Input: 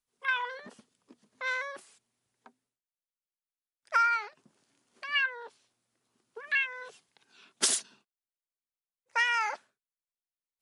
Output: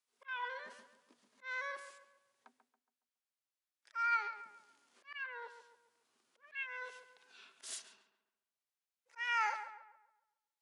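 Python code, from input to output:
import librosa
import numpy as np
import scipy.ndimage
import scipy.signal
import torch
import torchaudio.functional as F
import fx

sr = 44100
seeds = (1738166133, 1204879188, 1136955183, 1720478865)

y = fx.hpss(x, sr, part='percussive', gain_db=-10)
y = fx.auto_swell(y, sr, attack_ms=530.0)
y = fx.weighting(y, sr, curve='A')
y = fx.echo_filtered(y, sr, ms=139, feedback_pct=42, hz=2400.0, wet_db=-9.5)
y = y * 10.0 ** (3.0 / 20.0)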